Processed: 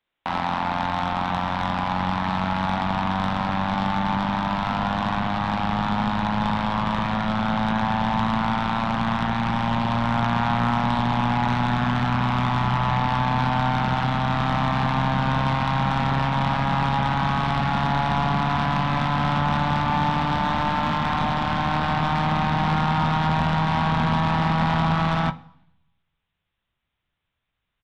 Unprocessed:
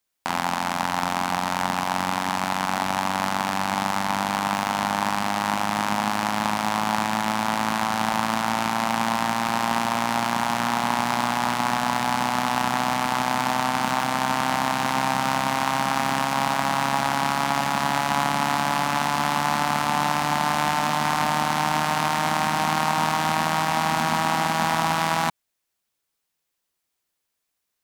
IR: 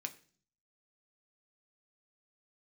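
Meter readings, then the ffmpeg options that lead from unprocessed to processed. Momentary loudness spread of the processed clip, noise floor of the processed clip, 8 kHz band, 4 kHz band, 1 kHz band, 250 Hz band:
3 LU, -80 dBFS, under -15 dB, -3.0 dB, -0.5 dB, +4.0 dB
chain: -filter_complex "[0:a]aresample=8000,aeval=exprs='0.501*sin(PI/2*1.78*val(0)/0.501)':c=same,aresample=44100,asubboost=boost=5.5:cutoff=150,bandreject=f=249.8:t=h:w=4,bandreject=f=499.6:t=h:w=4,bandreject=f=749.4:t=h:w=4,asoftclip=type=tanh:threshold=-10.5dB,asplit=2[a][b];[1:a]atrim=start_sample=2205,asetrate=24696,aresample=44100,adelay=17[c];[b][c]afir=irnorm=-1:irlink=0,volume=-11dB[d];[a][d]amix=inputs=2:normalize=0,volume=-5dB"

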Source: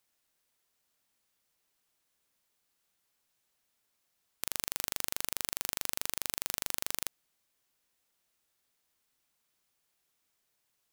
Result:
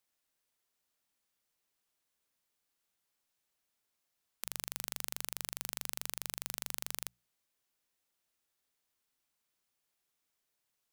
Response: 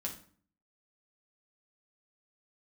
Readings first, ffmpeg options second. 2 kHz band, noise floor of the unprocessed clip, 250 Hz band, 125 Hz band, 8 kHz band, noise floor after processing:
-5.0 dB, -79 dBFS, -5.0 dB, -5.5 dB, -5.0 dB, -84 dBFS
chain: -af "bandreject=f=60:t=h:w=6,bandreject=f=120:t=h:w=6,bandreject=f=180:t=h:w=6,volume=-5dB"

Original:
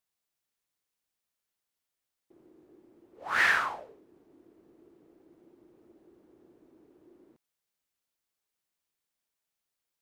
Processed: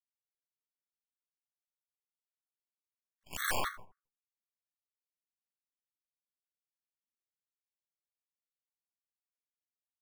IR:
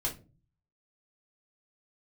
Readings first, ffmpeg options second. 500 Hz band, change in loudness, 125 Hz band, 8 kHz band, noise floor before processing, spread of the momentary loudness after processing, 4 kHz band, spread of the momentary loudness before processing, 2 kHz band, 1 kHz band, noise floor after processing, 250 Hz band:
-2.5 dB, -9.0 dB, n/a, +4.5 dB, under -85 dBFS, 15 LU, -4.5 dB, 21 LU, -13.0 dB, -8.0 dB, under -85 dBFS, -4.5 dB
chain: -filter_complex "[0:a]afwtdn=0.00447,aemphasis=mode=reproduction:type=75kf,acontrast=56,highpass=f=540:t=q:w=0.5412,highpass=f=540:t=q:w=1.307,lowpass=f=3.6k:t=q:w=0.5176,lowpass=f=3.6k:t=q:w=0.7071,lowpass=f=3.6k:t=q:w=1.932,afreqshift=-110,acrusher=samples=17:mix=1:aa=0.000001:lfo=1:lforange=27.2:lforate=0.47,aphaser=in_gain=1:out_gain=1:delay=3.1:decay=0.62:speed=0.27:type=sinusoidal,aeval=exprs='0.531*(cos(1*acos(clip(val(0)/0.531,-1,1)))-cos(1*PI/2))+0.0133*(cos(4*acos(clip(val(0)/0.531,-1,1)))-cos(4*PI/2))+0.075*(cos(7*acos(clip(val(0)/0.531,-1,1)))-cos(7*PI/2))+0.0335*(cos(8*acos(clip(val(0)/0.531,-1,1)))-cos(8*PI/2))':c=same,flanger=delay=9.7:depth=4.4:regen=49:speed=0.78:shape=triangular,acrusher=bits=4:mode=log:mix=0:aa=0.000001,asplit=2[a][b];[b]adelay=81,lowpass=f=1.4k:p=1,volume=-17dB,asplit=2[c][d];[d]adelay=81,lowpass=f=1.4k:p=1,volume=0.36,asplit=2[e][f];[f]adelay=81,lowpass=f=1.4k:p=1,volume=0.36[g];[a][c][e][g]amix=inputs=4:normalize=0,afftfilt=real='re*gt(sin(2*PI*3.7*pts/sr)*(1-2*mod(floor(b*sr/1024/1100),2)),0)':imag='im*gt(sin(2*PI*3.7*pts/sr)*(1-2*mod(floor(b*sr/1024/1100),2)),0)':win_size=1024:overlap=0.75,volume=-5dB"

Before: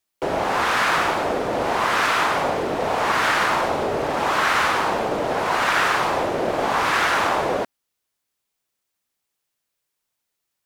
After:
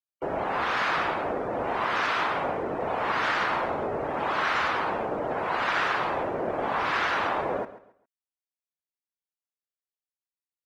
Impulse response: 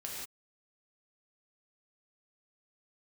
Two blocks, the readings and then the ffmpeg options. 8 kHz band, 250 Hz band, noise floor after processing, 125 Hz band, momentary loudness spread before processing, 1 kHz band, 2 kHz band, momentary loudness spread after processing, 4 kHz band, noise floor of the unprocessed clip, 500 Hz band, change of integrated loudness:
under -15 dB, -6.5 dB, under -85 dBFS, -6.5 dB, 5 LU, -6.5 dB, -6.5 dB, 5 LU, -8.5 dB, -80 dBFS, -6.5 dB, -6.5 dB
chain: -filter_complex "[0:a]afftdn=nr=18:nf=-33,asplit=2[a][b];[b]aecho=0:1:136|272|408:0.168|0.0453|0.0122[c];[a][c]amix=inputs=2:normalize=0,volume=-6.5dB"

